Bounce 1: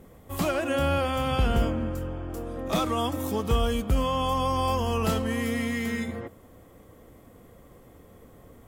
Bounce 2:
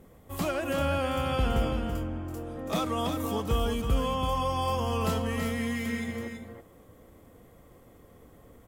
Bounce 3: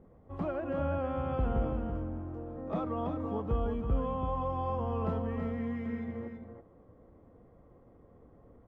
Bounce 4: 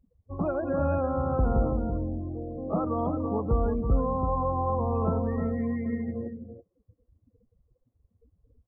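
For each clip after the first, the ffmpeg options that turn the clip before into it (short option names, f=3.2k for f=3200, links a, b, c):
-af "aecho=1:1:331:0.473,volume=-3.5dB"
-af "lowpass=1.1k,volume=-3.5dB"
-af "afftdn=nr=33:nf=-42,volume=6dB"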